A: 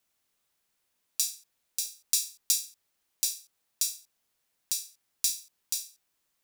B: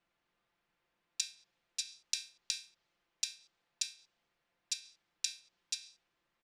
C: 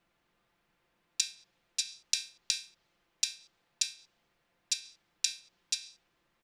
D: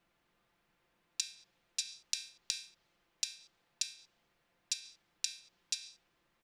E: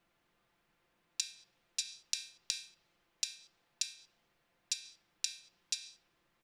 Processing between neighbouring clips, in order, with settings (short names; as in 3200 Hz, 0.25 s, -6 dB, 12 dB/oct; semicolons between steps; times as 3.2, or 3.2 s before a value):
low-pass opened by the level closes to 2400 Hz, open at -27 dBFS; comb 5.8 ms, depth 48%; treble ducked by the level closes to 2200 Hz, closed at -30 dBFS; gain +2.5 dB
low shelf 440 Hz +4.5 dB; gain +5.5 dB
compressor, threshold -30 dBFS, peak gain reduction 8 dB; gain -1 dB
reverb RT60 0.85 s, pre-delay 3 ms, DRR 18.5 dB